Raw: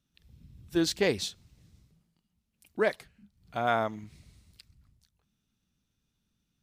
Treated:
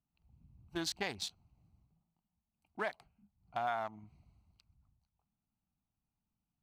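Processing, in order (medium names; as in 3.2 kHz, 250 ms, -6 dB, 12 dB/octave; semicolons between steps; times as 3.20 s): local Wiener filter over 25 samples; resonant low shelf 620 Hz -6.5 dB, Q 3; compression 4:1, threshold -31 dBFS, peak gain reduction 9.5 dB; trim -2.5 dB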